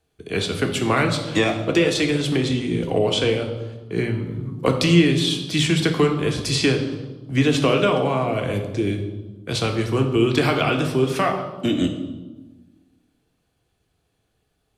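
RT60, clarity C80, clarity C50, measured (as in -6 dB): 1.3 s, 9.5 dB, 7.0 dB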